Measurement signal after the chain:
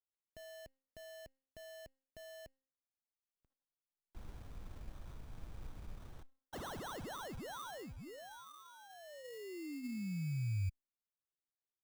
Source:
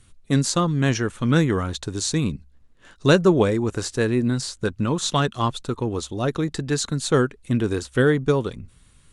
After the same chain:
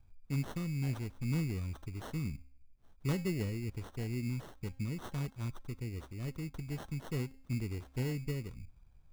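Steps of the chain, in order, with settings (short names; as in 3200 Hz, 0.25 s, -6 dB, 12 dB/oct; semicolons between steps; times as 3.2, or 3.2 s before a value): passive tone stack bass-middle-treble 10-0-1; de-hum 265.5 Hz, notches 34; sample-rate reducer 2400 Hz, jitter 0%; gain +1 dB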